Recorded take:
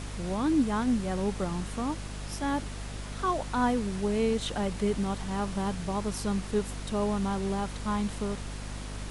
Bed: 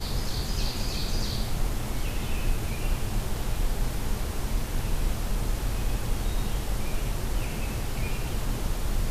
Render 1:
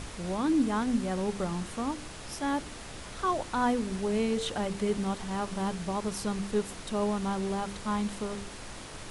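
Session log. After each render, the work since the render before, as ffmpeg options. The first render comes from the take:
-af "bandreject=f=50:t=h:w=4,bandreject=f=100:t=h:w=4,bandreject=f=150:t=h:w=4,bandreject=f=200:t=h:w=4,bandreject=f=250:t=h:w=4,bandreject=f=300:t=h:w=4,bandreject=f=350:t=h:w=4,bandreject=f=400:t=h:w=4,bandreject=f=450:t=h:w=4"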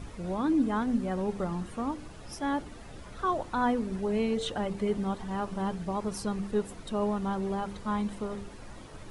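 -af "afftdn=nr=11:nf=-43"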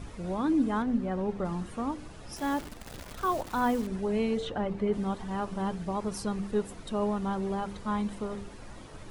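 -filter_complex "[0:a]asettb=1/sr,asplit=3[s0][s1][s2];[s0]atrim=end=0.824[s3];[s1]atrim=start=0.82:end=1.45,asetpts=PTS-STARTPTS,afade=t=in:d=0.004:c=qsin,afade=t=out:st=0.626:d=0.004:c=qsin,lowpass=f=2700:p=1[s4];[s2]atrim=start=1.446[s5];[s3][s4]acrossfade=d=0.004:c1=hsin:c2=qsin[s6];[s6][s5]acrossfade=d=0.004:c1=qsin:c2=hsin,asettb=1/sr,asplit=3[s7][s8][s9];[s7]atrim=end=2.364[s10];[s8]atrim=start=2.36:end=3.87,asetpts=PTS-STARTPTS,afade=t=in:d=0.004:c=qsin,afade=t=out:st=1.506:d=0.004:c=qsin,acrusher=bits=8:dc=4:mix=0:aa=0.000001[s11];[s9]atrim=start=3.866[s12];[s10][s11]acrossfade=d=0.004:c1=hsin:c2=qsin[s13];[s13][s12]acrossfade=d=0.004:c1=qsin:c2=hsin,asplit=3[s14][s15][s16];[s14]afade=t=out:st=4.4:d=0.02[s17];[s15]aemphasis=mode=reproduction:type=75fm,afade=t=in:st=4.4:d=0.02,afade=t=out:st=4.92:d=0.02[s18];[s16]afade=t=in:st=4.92:d=0.02[s19];[s17][s18][s19]amix=inputs=3:normalize=0"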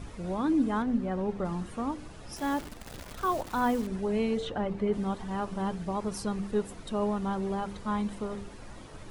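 -af anull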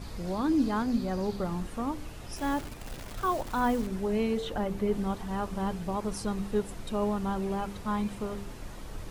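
-filter_complex "[1:a]volume=0.168[s0];[0:a][s0]amix=inputs=2:normalize=0"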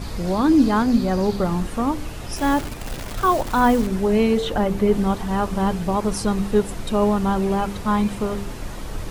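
-af "volume=3.35"

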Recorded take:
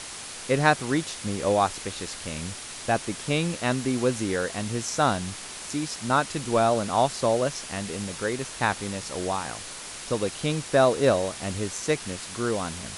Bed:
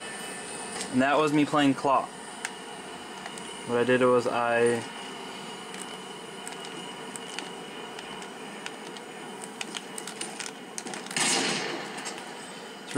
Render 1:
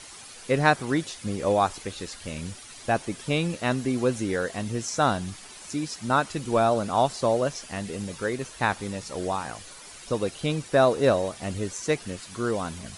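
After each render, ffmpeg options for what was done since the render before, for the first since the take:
-af "afftdn=nr=10:nf=-39"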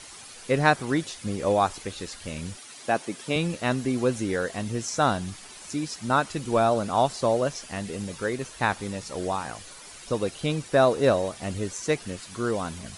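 -filter_complex "[0:a]asettb=1/sr,asplit=3[s0][s1][s2];[s0]atrim=end=2.574[s3];[s1]atrim=start=2.57:end=3.36,asetpts=PTS-STARTPTS,afade=t=in:d=0.004:c=qsin,afade=t=out:st=0.786:d=0.004:c=qsin,highpass=190[s4];[s2]atrim=start=3.356[s5];[s3][s4]acrossfade=d=0.004:c1=hsin:c2=qsin[s6];[s6][s5]acrossfade=d=0.004:c1=qsin:c2=hsin"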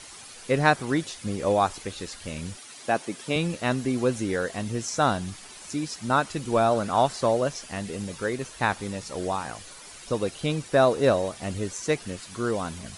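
-filter_complex "[0:a]asettb=1/sr,asplit=3[s0][s1][s2];[s0]atrim=end=6.704[s3];[s1]atrim=start=6.7:end=7.31,asetpts=PTS-STARTPTS,afade=t=in:d=0.004:c=qsin,afade=t=out:st=0.606:d=0.004:c=qsin,equalizer=f=1600:w=1.5:g=4.5[s4];[s2]atrim=start=7.306[s5];[s3][s4]acrossfade=d=0.004:c1=hsin:c2=qsin[s6];[s6][s5]acrossfade=d=0.004:c1=qsin:c2=hsin"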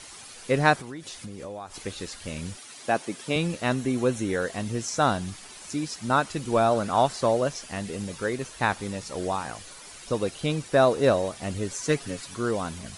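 -filter_complex "[0:a]asettb=1/sr,asplit=3[s0][s1][s2];[s0]atrim=end=0.754[s3];[s1]atrim=start=0.75:end=1.75,asetpts=PTS-STARTPTS,afade=t=in:d=0.004:c=qsin,afade=t=out:st=0.996:d=0.004:c=qsin,acompressor=threshold=0.02:ratio=8:attack=3.2:release=140:knee=1:detection=peak[s4];[s2]atrim=start=1.746[s5];[s3][s4]acrossfade=d=0.004:c1=hsin:c2=qsin[s6];[s6][s5]acrossfade=d=0.004:c1=qsin:c2=hsin,asettb=1/sr,asplit=3[s7][s8][s9];[s7]atrim=end=3.744[s10];[s8]atrim=start=3.74:end=4.42,asetpts=PTS-STARTPTS,afade=t=in:d=0.004:c=qsin,afade=t=out:st=0.676:d=0.004:c=qsin,bandreject=f=4800:w=7.2[s11];[s9]atrim=start=4.416[s12];[s10][s11]acrossfade=d=0.004:c1=hsin:c2=qsin[s13];[s13][s12]acrossfade=d=0.004:c1=qsin:c2=hsin,asettb=1/sr,asplit=3[s14][s15][s16];[s14]atrim=end=11.704[s17];[s15]atrim=start=11.7:end=12.34,asetpts=PTS-STARTPTS,afade=t=in:d=0.004:c=qsin,afade=t=out:st=0.636:d=0.004:c=qsin,aecho=1:1:7.2:0.69,atrim=end_sample=28224[s18];[s16]atrim=start=12.336[s19];[s17][s18]acrossfade=d=0.004:c1=hsin:c2=qsin[s20];[s20][s19]acrossfade=d=0.004:c1=qsin:c2=hsin"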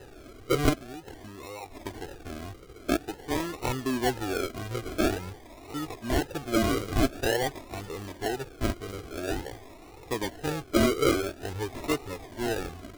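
-af "acrusher=samples=39:mix=1:aa=0.000001:lfo=1:lforange=23.4:lforate=0.48,flanger=delay=2.2:depth=1:regen=0:speed=1.9:shape=triangular"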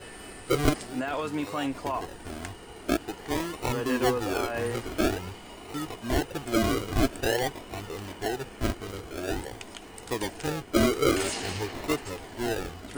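-filter_complex "[1:a]volume=0.398[s0];[0:a][s0]amix=inputs=2:normalize=0"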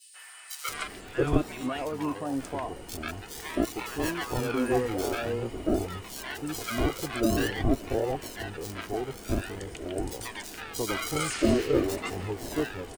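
-filter_complex "[0:a]acrossover=split=1000|3900[s0][s1][s2];[s1]adelay=140[s3];[s0]adelay=680[s4];[s4][s3][s2]amix=inputs=3:normalize=0"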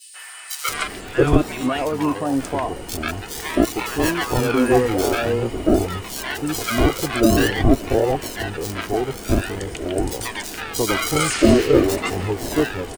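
-af "volume=3.16,alimiter=limit=0.794:level=0:latency=1"

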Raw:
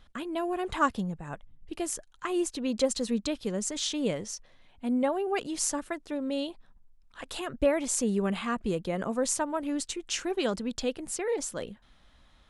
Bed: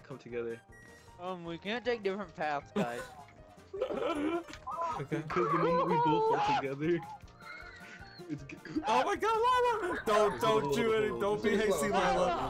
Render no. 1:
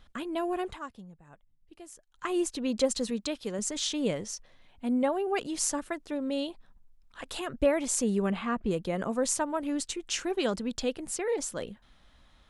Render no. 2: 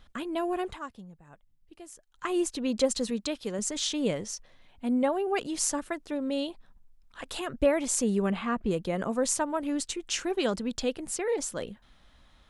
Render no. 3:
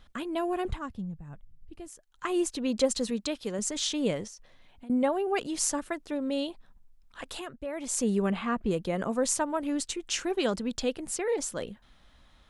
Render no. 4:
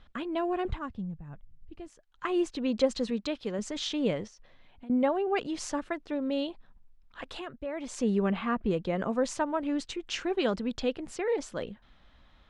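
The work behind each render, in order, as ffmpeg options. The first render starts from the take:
-filter_complex "[0:a]asettb=1/sr,asplit=3[s0][s1][s2];[s0]atrim=end=3.104[s3];[s1]atrim=start=3.1:end=3.59,asetpts=PTS-STARTPTS,afade=t=in:d=0.004:c=qsin,afade=t=out:st=0.486:d=0.004:c=qsin,lowshelf=f=230:g=-8.5[s4];[s2]atrim=start=3.586[s5];[s3][s4]acrossfade=d=0.004:c1=hsin:c2=qsin[s6];[s6][s5]acrossfade=d=0.004:c1=qsin:c2=hsin,asettb=1/sr,asplit=3[s7][s8][s9];[s7]atrim=end=8.314[s10];[s8]atrim=start=8.31:end=8.71,asetpts=PTS-STARTPTS,afade=t=in:d=0.004:c=qsin,afade=t=out:st=0.396:d=0.004:c=qsin,aemphasis=mode=reproduction:type=75fm[s11];[s9]atrim=start=8.706[s12];[s10][s11]acrossfade=d=0.004:c1=hsin:c2=qsin[s13];[s13][s12]acrossfade=d=0.004:c1=qsin:c2=hsin,asplit=3[s14][s15][s16];[s14]atrim=end=0.79,asetpts=PTS-STARTPTS,afade=t=out:st=0.61:d=0.18:silence=0.16788[s17];[s15]atrim=start=0.79:end=2.07,asetpts=PTS-STARTPTS,volume=0.168[s18];[s16]atrim=start=2.07,asetpts=PTS-STARTPTS,afade=t=in:d=0.18:silence=0.16788[s19];[s17][s18][s19]concat=n=3:v=0:a=1"
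-af "volume=1.12"
-filter_complex "[0:a]asettb=1/sr,asplit=3[s0][s1][s2];[s0]atrim=end=0.654[s3];[s1]atrim=start=0.65:end=1.88,asetpts=PTS-STARTPTS,afade=t=in:d=0.004:c=qsin,afade=t=out:st=1.226:d=0.004:c=qsin,bass=f=250:g=15,treble=f=4000:g=-2[s4];[s2]atrim=start=1.876[s5];[s3][s4]acrossfade=d=0.004:c1=hsin:c2=qsin[s6];[s6][s5]acrossfade=d=0.004:c1=qsin:c2=hsin,asettb=1/sr,asplit=3[s7][s8][s9];[s7]atrim=end=4.274[s10];[s8]atrim=start=4.27:end=4.9,asetpts=PTS-STARTPTS,afade=t=in:d=0.004:c=qsin,afade=t=out:st=0.626:d=0.004:c=qsin,acompressor=threshold=0.00708:ratio=12:attack=3.2:release=140:knee=1:detection=peak[s11];[s9]atrim=start=4.896[s12];[s10][s11]acrossfade=d=0.004:c1=hsin:c2=qsin[s13];[s13][s12]acrossfade=d=0.004:c1=qsin:c2=hsin,asplit=3[s14][s15][s16];[s14]atrim=end=7.62,asetpts=PTS-STARTPTS,afade=t=out:st=7.22:d=0.4:silence=0.199526[s17];[s15]atrim=start=7.62:end=7.67,asetpts=PTS-STARTPTS,volume=0.2[s18];[s16]atrim=start=7.67,asetpts=PTS-STARTPTS,afade=t=in:d=0.4:silence=0.199526[s19];[s17][s18][s19]concat=n=3:v=0:a=1"
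-af "lowpass=3900"

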